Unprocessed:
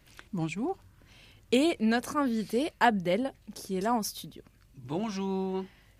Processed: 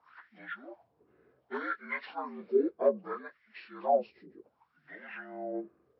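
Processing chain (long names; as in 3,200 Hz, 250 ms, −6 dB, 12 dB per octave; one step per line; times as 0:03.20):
partials spread apart or drawn together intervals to 76%
hard clipping −18 dBFS, distortion −22 dB
LFO wah 0.65 Hz 370–2,000 Hz, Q 5.5
level +9 dB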